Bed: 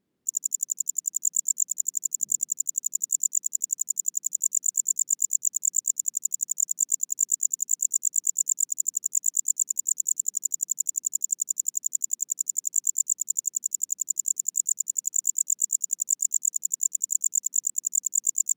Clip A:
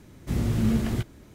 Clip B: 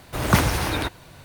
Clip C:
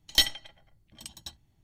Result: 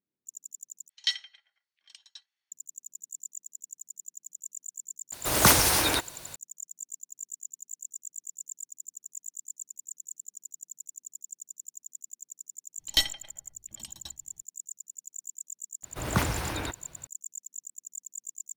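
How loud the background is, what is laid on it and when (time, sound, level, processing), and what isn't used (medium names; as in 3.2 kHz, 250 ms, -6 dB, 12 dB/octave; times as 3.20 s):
bed -16.5 dB
0.89 s: replace with C -5 dB + Chebyshev band-pass 1.6–5.5 kHz
5.12 s: add B -1 dB + tone controls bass -8 dB, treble +11 dB
12.79 s: add C -2 dB
15.83 s: add B -8.5 dB
not used: A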